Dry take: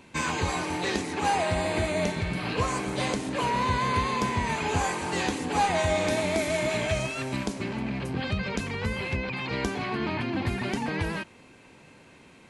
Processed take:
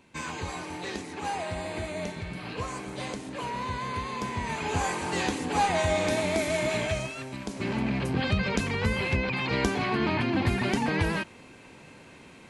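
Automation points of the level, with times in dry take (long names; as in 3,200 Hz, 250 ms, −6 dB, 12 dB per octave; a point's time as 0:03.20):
0:04.05 −7 dB
0:04.95 −0.5 dB
0:06.80 −0.5 dB
0:07.39 −8 dB
0:07.70 +3 dB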